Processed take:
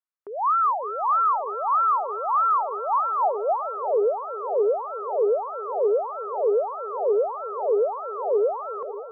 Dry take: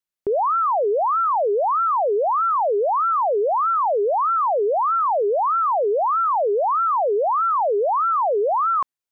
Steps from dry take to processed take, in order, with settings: split-band echo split 450 Hz, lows 0.562 s, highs 0.373 s, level -11.5 dB; band-pass sweep 1200 Hz -> 460 Hz, 2.74–4.03

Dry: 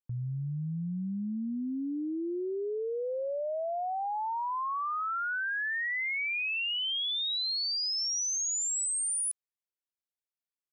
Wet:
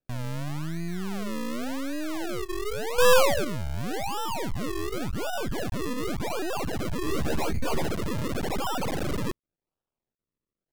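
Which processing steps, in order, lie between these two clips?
2.98–3.45 small resonant body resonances 510/730 Hz, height 15 dB, ringing for 45 ms; decimation with a swept rate 40×, swing 100% 0.89 Hz; half-wave rectifier; vibrato 3.1 Hz 28 cents; 7.05–7.87 doubler 13 ms -2 dB; gain +6.5 dB

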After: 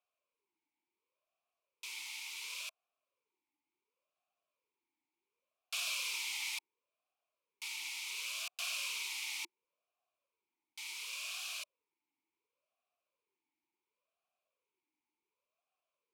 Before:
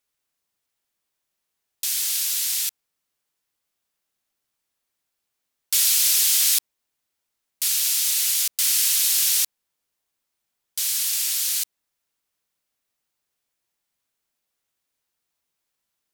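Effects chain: vowel sweep a-u 0.7 Hz; gain +7.5 dB

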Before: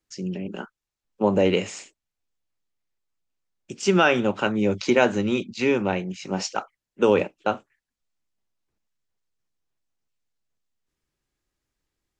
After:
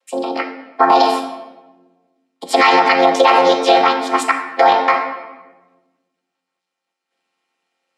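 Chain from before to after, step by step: chord vocoder major triad, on A#2; HPF 610 Hz 12 dB/oct; wide varispeed 1.53×; air absorption 56 m; shoebox room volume 670 m³, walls mixed, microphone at 0.79 m; maximiser +23.5 dB; gain -1 dB

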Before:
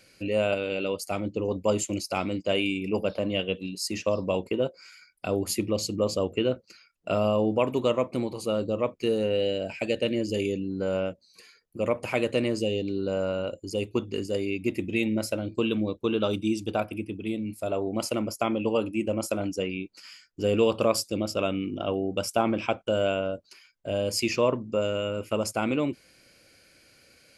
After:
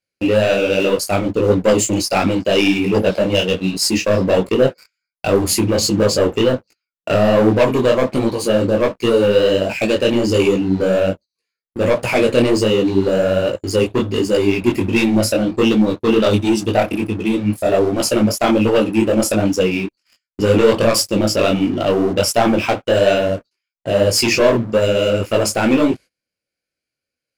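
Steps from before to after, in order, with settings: gate -44 dBFS, range -24 dB; sample leveller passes 3; detuned doubles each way 46 cents; gain +7 dB

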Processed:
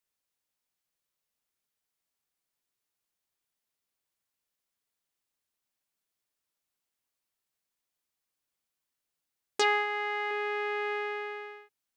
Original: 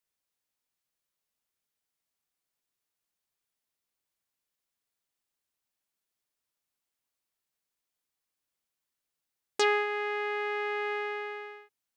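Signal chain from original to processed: 9.61–10.31 comb 3.8 ms, depth 47%

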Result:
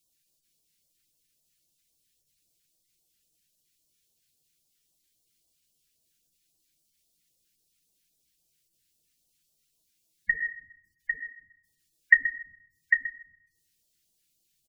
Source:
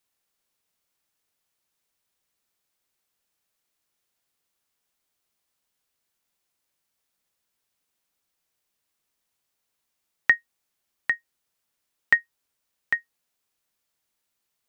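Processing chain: on a send at -5 dB: reverb RT60 0.60 s, pre-delay 6 ms; on the sum: phaser stages 2, 3.7 Hz, lowest notch 760–1600 Hz; spectral gate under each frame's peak -15 dB strong; notches 60/120/180/240/300/360/420/480 Hz; feedback echo 0.128 s, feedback 18%, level -13.5 dB; dynamic EQ 1500 Hz, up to +3 dB, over -40 dBFS, Q 0.73; gain +5 dB

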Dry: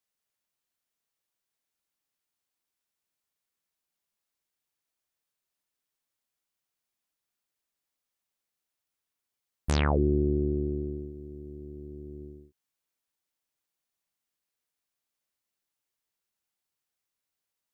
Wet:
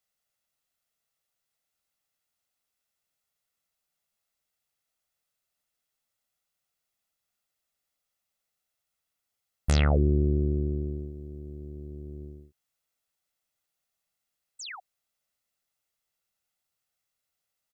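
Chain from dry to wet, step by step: painted sound fall, 14.59–14.8, 670–8700 Hz -42 dBFS; dynamic EQ 970 Hz, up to -7 dB, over -46 dBFS, Q 1.2; comb 1.5 ms, depth 39%; gain +2 dB

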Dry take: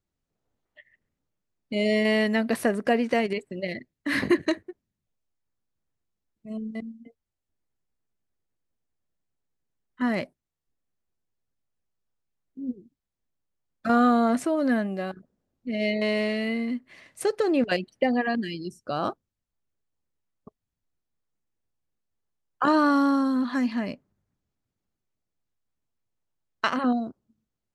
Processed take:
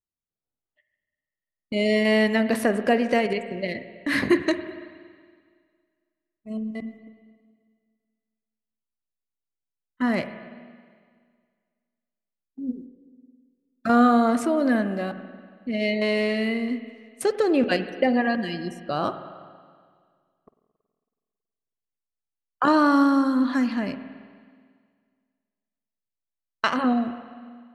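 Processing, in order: gate -44 dBFS, range -18 dB; spring tank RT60 1.9 s, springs 46/54 ms, chirp 80 ms, DRR 10 dB; gain +2 dB

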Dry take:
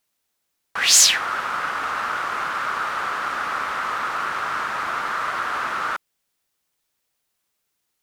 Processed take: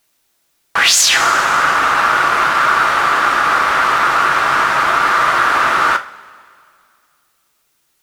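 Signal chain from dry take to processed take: two-slope reverb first 0.29 s, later 2.3 s, from -21 dB, DRR 6.5 dB; maximiser +12.5 dB; gain -1 dB

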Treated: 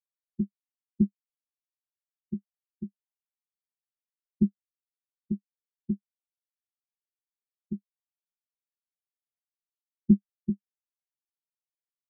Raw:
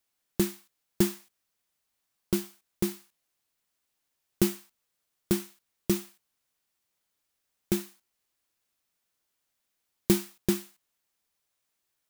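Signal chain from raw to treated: low shelf 180 Hz +8 dB; doubler 13 ms -3.5 dB; tube stage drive 15 dB, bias 0.6; spectral expander 4:1; gain +3 dB

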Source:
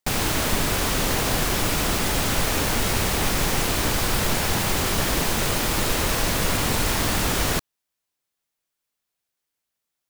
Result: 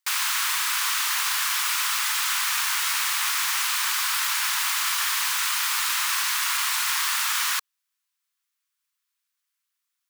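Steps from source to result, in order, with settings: steep high-pass 1000 Hz 48 dB/oct; gain +1.5 dB

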